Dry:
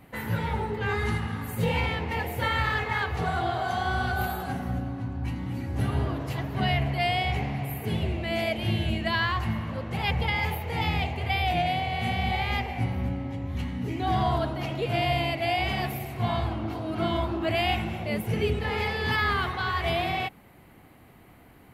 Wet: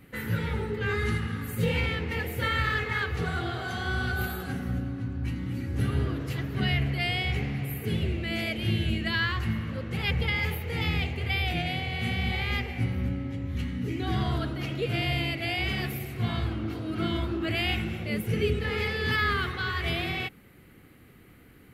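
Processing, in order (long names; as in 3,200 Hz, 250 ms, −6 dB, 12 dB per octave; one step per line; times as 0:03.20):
flat-topped bell 800 Hz −10.5 dB 1 octave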